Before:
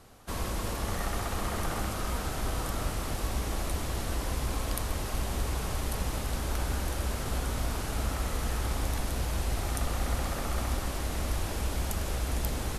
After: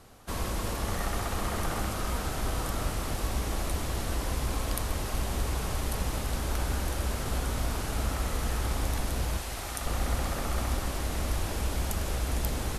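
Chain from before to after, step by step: 9.37–9.86 s: bass shelf 480 Hz -9.5 dB; trim +1 dB

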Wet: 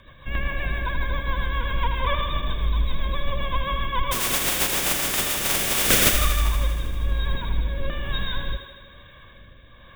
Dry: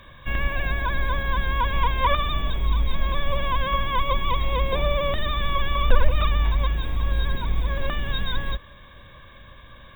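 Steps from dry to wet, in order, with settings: 4.11–6.12 s: spectral contrast reduction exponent 0.12; rotary cabinet horn 7.5 Hz, later 1.1 Hz, at 5.08 s; thinning echo 79 ms, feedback 73%, high-pass 200 Hz, level -8 dB

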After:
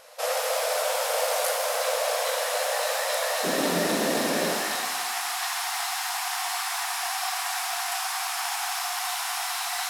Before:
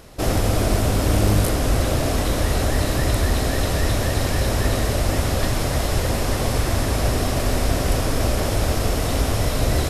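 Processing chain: brick-wall FIR high-pass 460 Hz, from 3.43 s 160 Hz, from 4.49 s 690 Hz; pitch-shifted reverb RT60 1.3 s, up +7 st, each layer -8 dB, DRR 2 dB; trim -2.5 dB

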